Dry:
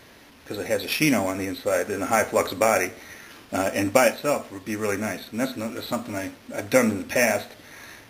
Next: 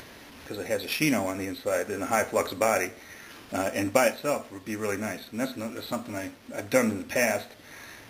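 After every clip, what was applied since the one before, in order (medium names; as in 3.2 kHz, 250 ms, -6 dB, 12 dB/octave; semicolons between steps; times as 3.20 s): upward compressor, threshold -35 dBFS; trim -4 dB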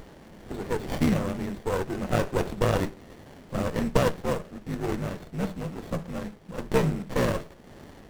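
frequency shift -66 Hz; sliding maximum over 33 samples; trim +1.5 dB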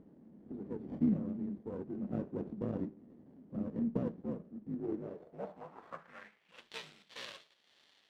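band-pass sweep 240 Hz -> 3.6 kHz, 4.71–6.71 s; trim -4 dB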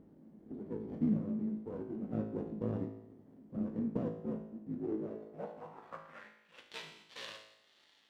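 feedback comb 54 Hz, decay 0.83 s, harmonics all, mix 80%; trim +9 dB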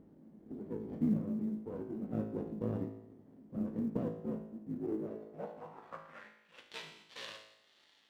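short-mantissa float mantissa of 6-bit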